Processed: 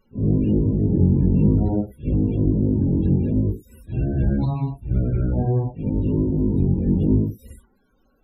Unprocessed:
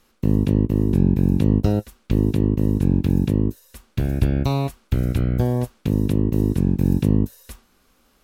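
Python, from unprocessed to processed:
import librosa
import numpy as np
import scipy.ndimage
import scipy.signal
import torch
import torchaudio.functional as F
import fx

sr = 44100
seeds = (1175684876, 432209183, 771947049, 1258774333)

y = fx.phase_scramble(x, sr, seeds[0], window_ms=200)
y = fx.notch(y, sr, hz=1200.0, q=8.5)
y = fx.spec_topn(y, sr, count=32)
y = fx.graphic_eq_10(y, sr, hz=(500, 2000, 4000), db=(-10, -8, -10), at=(4.44, 4.94), fade=0.02)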